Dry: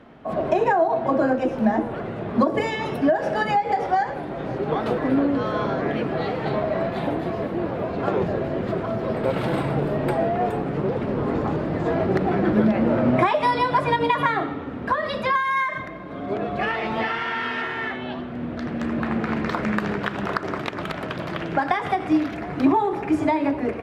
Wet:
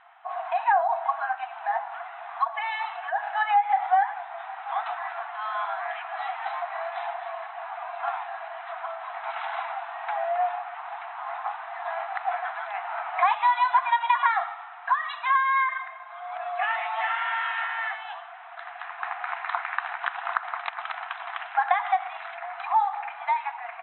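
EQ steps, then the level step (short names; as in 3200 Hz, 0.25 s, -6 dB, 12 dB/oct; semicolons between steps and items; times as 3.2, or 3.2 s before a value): brick-wall FIR band-pass 670–4100 Hz; air absorption 290 m; +1.5 dB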